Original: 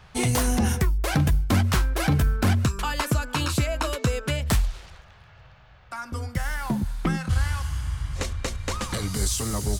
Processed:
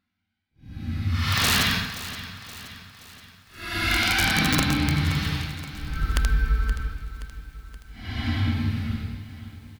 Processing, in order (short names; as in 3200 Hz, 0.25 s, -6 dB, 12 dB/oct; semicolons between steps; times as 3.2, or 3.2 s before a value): graphic EQ 125/250/500/2000/4000/8000 Hz -7/+4/-10/+7/+11/-9 dB; echo 0.445 s -10.5 dB; step gate "...xx.x..x" 172 bpm -60 dB; Paulstretch 8.4×, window 0.10 s, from 1.55; wrapped overs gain 12.5 dB; lo-fi delay 0.524 s, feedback 55%, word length 8-bit, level -13.5 dB